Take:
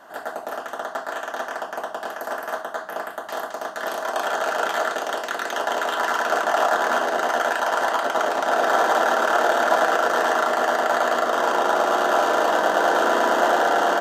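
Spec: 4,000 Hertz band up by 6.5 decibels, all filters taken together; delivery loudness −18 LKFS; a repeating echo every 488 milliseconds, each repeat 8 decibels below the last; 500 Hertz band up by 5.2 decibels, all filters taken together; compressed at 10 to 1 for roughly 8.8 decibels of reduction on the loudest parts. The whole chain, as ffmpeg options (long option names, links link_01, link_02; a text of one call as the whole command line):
ffmpeg -i in.wav -af "equalizer=frequency=500:width_type=o:gain=7,equalizer=frequency=4000:width_type=o:gain=8.5,acompressor=threshold=-20dB:ratio=10,aecho=1:1:488|976|1464|1952|2440:0.398|0.159|0.0637|0.0255|0.0102,volume=6dB" out.wav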